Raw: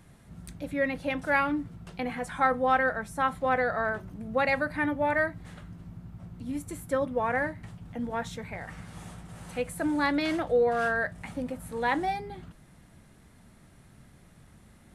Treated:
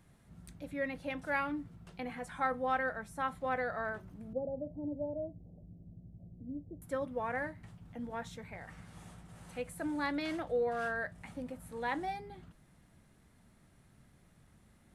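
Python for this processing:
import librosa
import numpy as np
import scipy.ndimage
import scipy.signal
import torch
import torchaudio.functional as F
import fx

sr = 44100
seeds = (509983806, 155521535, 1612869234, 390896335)

y = fx.steep_lowpass(x, sr, hz=670.0, slope=48, at=(4.33, 6.82))
y = y * 10.0 ** (-8.5 / 20.0)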